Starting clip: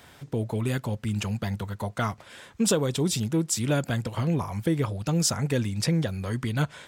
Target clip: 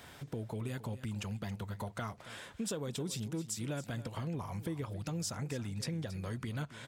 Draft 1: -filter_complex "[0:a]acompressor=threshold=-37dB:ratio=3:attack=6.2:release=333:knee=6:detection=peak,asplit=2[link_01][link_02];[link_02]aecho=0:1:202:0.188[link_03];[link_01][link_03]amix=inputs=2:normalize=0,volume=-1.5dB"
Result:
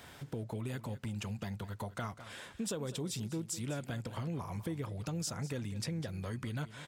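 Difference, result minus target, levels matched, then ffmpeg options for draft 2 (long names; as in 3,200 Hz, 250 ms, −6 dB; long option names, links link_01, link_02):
echo 72 ms early
-filter_complex "[0:a]acompressor=threshold=-37dB:ratio=3:attack=6.2:release=333:knee=6:detection=peak,asplit=2[link_01][link_02];[link_02]aecho=0:1:274:0.188[link_03];[link_01][link_03]amix=inputs=2:normalize=0,volume=-1.5dB"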